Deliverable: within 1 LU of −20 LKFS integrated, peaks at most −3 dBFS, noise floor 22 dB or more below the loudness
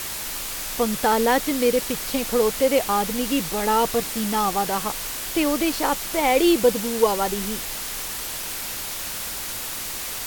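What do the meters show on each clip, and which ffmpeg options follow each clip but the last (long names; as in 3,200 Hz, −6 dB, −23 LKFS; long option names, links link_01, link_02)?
background noise floor −31 dBFS; target noise floor −45 dBFS; integrated loudness −22.5 LKFS; sample peak −4.5 dBFS; target loudness −20.0 LKFS
→ -af "afftdn=noise_reduction=14:noise_floor=-31"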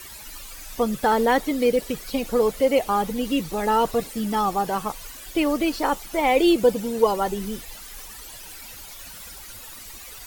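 background noise floor −41 dBFS; target noise floor −45 dBFS
→ -af "afftdn=noise_reduction=6:noise_floor=-41"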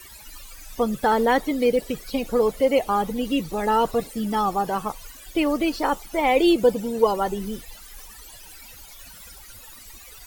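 background noise floor −45 dBFS; integrated loudness −23.0 LKFS; sample peak −5.0 dBFS; target loudness −20.0 LKFS
→ -af "volume=3dB,alimiter=limit=-3dB:level=0:latency=1"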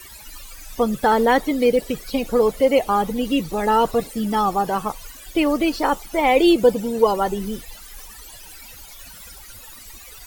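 integrated loudness −20.0 LKFS; sample peak −3.0 dBFS; background noise floor −42 dBFS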